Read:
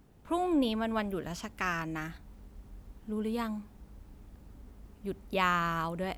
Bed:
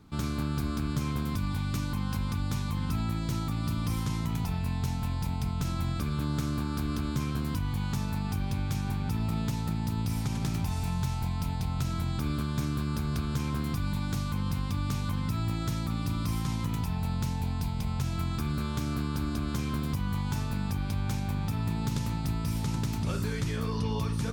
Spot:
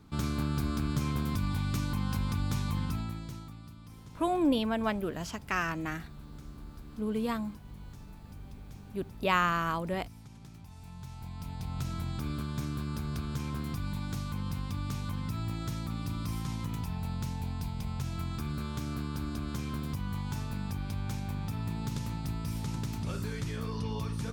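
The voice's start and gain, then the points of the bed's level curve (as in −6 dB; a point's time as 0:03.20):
3.90 s, +1.5 dB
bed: 0:02.78 −0.5 dB
0:03.76 −19.5 dB
0:10.66 −19.5 dB
0:11.79 −4.5 dB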